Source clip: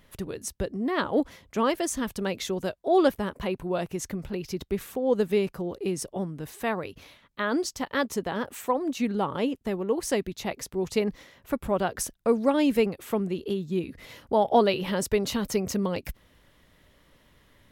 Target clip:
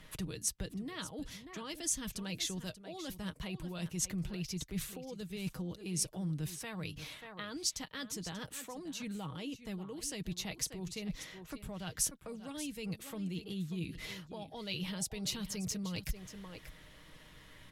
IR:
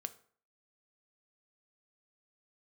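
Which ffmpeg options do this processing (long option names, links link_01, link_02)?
-filter_complex "[0:a]lowpass=12000,areverse,acompressor=threshold=-33dB:ratio=6,areverse,bass=frequency=250:gain=4,treble=frequency=4000:gain=-2,aecho=1:1:6.4:0.41,asplit=2[link_01][link_02];[link_02]aecho=0:1:586:0.2[link_03];[link_01][link_03]amix=inputs=2:normalize=0,acrossover=split=200|3000[link_04][link_05][link_06];[link_05]acompressor=threshold=-47dB:ratio=5[link_07];[link_04][link_07][link_06]amix=inputs=3:normalize=0,tiltshelf=frequency=1200:gain=-4,volume=2.5dB"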